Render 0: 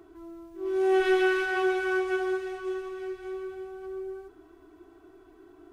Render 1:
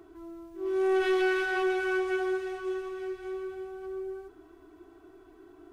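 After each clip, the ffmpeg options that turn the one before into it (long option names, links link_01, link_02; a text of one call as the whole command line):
ffmpeg -i in.wav -af "asoftclip=type=tanh:threshold=-20.5dB" out.wav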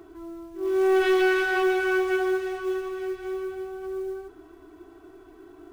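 ffmpeg -i in.wav -af "acrusher=bits=8:mode=log:mix=0:aa=0.000001,volume=5dB" out.wav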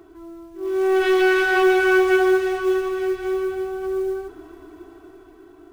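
ffmpeg -i in.wav -af "dynaudnorm=framelen=300:gausssize=9:maxgain=8dB" out.wav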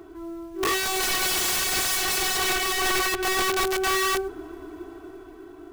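ffmpeg -i in.wav -af "aeval=exprs='(mod(14.1*val(0)+1,2)-1)/14.1':channel_layout=same,volume=3dB" out.wav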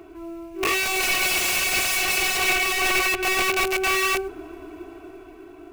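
ffmpeg -i in.wav -af "superequalizer=8b=1.58:12b=2.82" out.wav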